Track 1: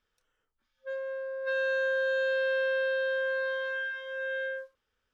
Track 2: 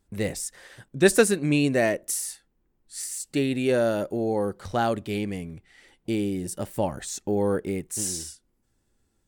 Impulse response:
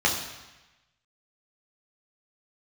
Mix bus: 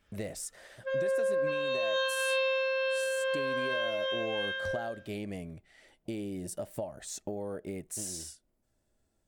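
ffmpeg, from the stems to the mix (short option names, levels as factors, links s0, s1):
-filter_complex "[0:a]volume=1.06,asplit=2[s0][s1];[s1]volume=0.596[s2];[1:a]equalizer=f=630:t=o:w=0.27:g=14,acompressor=threshold=0.0398:ratio=12,volume=0.531[s3];[2:a]atrim=start_sample=2205[s4];[s2][s4]afir=irnorm=-1:irlink=0[s5];[s0][s3][s5]amix=inputs=3:normalize=0,alimiter=limit=0.0668:level=0:latency=1:release=10"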